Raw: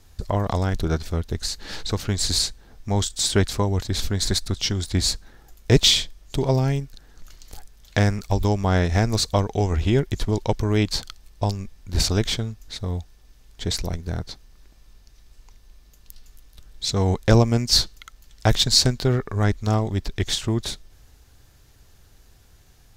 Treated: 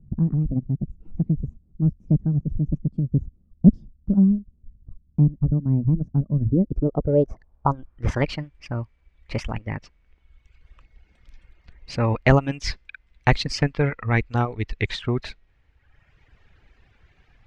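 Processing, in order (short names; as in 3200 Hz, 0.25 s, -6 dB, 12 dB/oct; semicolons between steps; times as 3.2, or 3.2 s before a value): speed glide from 163% -> 100%; reverb removal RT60 1.3 s; low-pass sweep 210 Hz -> 2300 Hz, 6.38–8.36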